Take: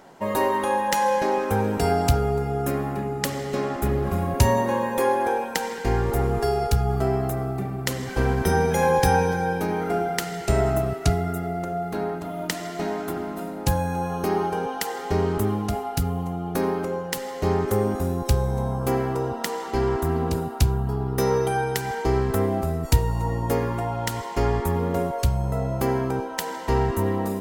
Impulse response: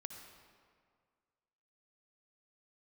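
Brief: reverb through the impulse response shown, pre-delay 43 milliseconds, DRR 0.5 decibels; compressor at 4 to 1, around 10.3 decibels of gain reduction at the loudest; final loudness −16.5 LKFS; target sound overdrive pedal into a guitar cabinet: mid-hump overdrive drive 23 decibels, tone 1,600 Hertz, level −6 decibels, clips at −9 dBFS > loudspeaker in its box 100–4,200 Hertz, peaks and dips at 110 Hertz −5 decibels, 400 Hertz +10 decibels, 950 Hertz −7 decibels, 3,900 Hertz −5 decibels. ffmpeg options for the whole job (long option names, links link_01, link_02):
-filter_complex "[0:a]acompressor=threshold=-25dB:ratio=4,asplit=2[link_01][link_02];[1:a]atrim=start_sample=2205,adelay=43[link_03];[link_02][link_03]afir=irnorm=-1:irlink=0,volume=3dB[link_04];[link_01][link_04]amix=inputs=2:normalize=0,asplit=2[link_05][link_06];[link_06]highpass=frequency=720:poles=1,volume=23dB,asoftclip=type=tanh:threshold=-9dB[link_07];[link_05][link_07]amix=inputs=2:normalize=0,lowpass=frequency=1600:poles=1,volume=-6dB,highpass=100,equalizer=frequency=110:width_type=q:width=4:gain=-5,equalizer=frequency=400:width_type=q:width=4:gain=10,equalizer=frequency=950:width_type=q:width=4:gain=-7,equalizer=frequency=3900:width_type=q:width=4:gain=-5,lowpass=frequency=4200:width=0.5412,lowpass=frequency=4200:width=1.3066,volume=-1.5dB"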